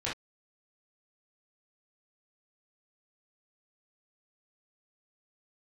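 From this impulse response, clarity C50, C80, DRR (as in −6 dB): 5.0 dB, 27.5 dB, −8.0 dB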